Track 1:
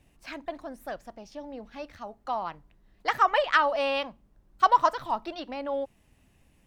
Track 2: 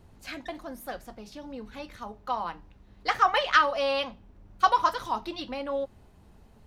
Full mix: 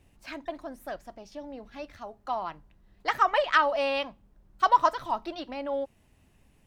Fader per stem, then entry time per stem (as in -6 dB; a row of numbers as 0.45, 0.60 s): -1.0, -13.5 dB; 0.00, 0.00 s